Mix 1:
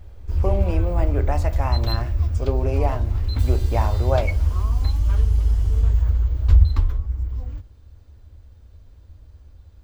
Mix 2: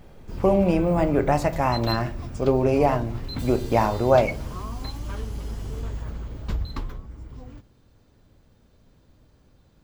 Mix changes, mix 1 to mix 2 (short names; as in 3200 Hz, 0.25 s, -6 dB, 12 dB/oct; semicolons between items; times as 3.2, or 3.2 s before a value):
speech +5.0 dB; master: add resonant low shelf 110 Hz -11 dB, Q 3